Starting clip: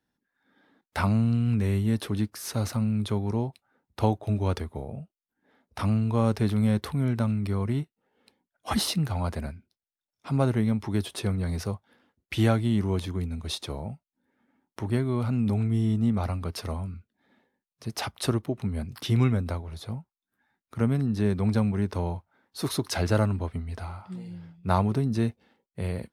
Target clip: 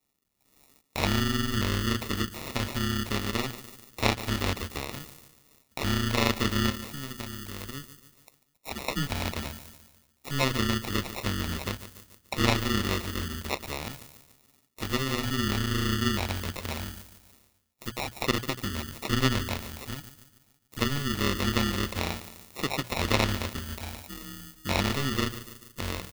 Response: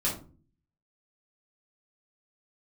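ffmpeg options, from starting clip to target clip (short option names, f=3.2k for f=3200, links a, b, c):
-filter_complex "[0:a]asettb=1/sr,asplit=3[a][b][c];[a]atrim=end=6.704[d];[b]atrim=start=6.7:end=8.88,asetpts=PTS-STARTPTS,afade=t=in:d=0.004:c=qsin,afade=t=out:st=2.176:d=0.004:c=qsin,acompressor=threshold=-42dB:ratio=2[e];[c]atrim=start=8.876[f];[d][e]acrossfade=d=0.004:c1=hsin:c2=qsin[g];[g][f]acrossfade=d=0.004:c1=qsin:c2=hsin,tremolo=f=140:d=0.974,bandreject=f=60:t=h:w=6,bandreject=f=120:t=h:w=6,bandreject=f=180:t=h:w=6,asplit=2[h][i];[i]adelay=145,lowpass=f=2.1k:p=1,volume=-14dB,asplit=2[j][k];[k]adelay=145,lowpass=f=2.1k:p=1,volume=0.48,asplit=2[l][m];[m]adelay=145,lowpass=f=2.1k:p=1,volume=0.48,asplit=2[n][o];[o]adelay=145,lowpass=f=2.1k:p=1,volume=0.48,asplit=2[p][q];[q]adelay=145,lowpass=f=2.1k:p=1,volume=0.48[r];[h][j][l][n][p][r]amix=inputs=6:normalize=0,acrusher=samples=28:mix=1:aa=0.000001,acrossover=split=4500[s][t];[t]acompressor=threshold=-60dB:ratio=4:attack=1:release=60[u];[s][u]amix=inputs=2:normalize=0,crystalizer=i=8.5:c=0"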